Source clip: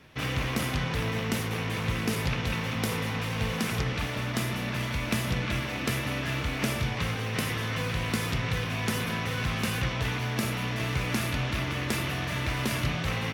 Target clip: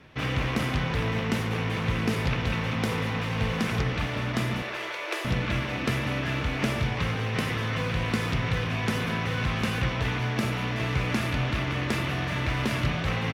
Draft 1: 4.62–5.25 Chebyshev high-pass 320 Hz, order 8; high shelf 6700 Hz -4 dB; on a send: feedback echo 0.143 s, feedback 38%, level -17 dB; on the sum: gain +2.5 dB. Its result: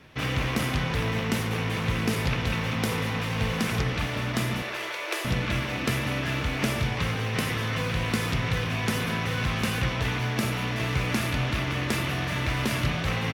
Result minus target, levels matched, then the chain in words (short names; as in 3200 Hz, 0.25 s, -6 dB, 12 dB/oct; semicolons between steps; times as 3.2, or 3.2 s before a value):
8000 Hz band +5.0 dB
4.62–5.25 Chebyshev high-pass 320 Hz, order 8; high shelf 6700 Hz -14 dB; on a send: feedback echo 0.143 s, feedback 38%, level -17 dB; on the sum: gain +2.5 dB